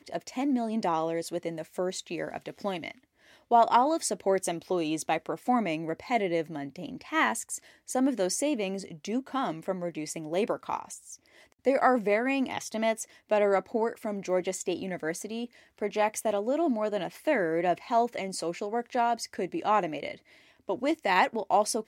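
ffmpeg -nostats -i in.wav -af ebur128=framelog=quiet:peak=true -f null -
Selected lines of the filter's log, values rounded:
Integrated loudness:
  I:         -29.3 LUFS
  Threshold: -39.6 LUFS
Loudness range:
  LRA:         3.4 LU
  Threshold: -49.6 LUFS
  LRA low:   -31.2 LUFS
  LRA high:  -27.9 LUFS
True peak:
  Peak:       -9.4 dBFS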